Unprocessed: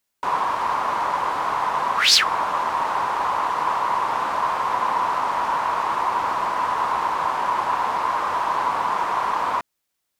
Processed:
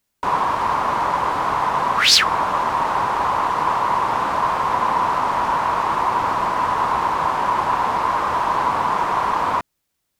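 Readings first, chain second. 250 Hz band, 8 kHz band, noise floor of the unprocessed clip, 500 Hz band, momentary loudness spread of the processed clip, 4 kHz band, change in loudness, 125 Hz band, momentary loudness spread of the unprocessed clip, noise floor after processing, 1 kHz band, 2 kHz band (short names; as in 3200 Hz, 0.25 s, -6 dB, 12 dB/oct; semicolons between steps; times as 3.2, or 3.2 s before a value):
+7.0 dB, +2.0 dB, -77 dBFS, +4.0 dB, 2 LU, +2.0 dB, +2.5 dB, +10.0 dB, 2 LU, -75 dBFS, +3.0 dB, +2.5 dB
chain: low shelf 280 Hz +10 dB; gain +2 dB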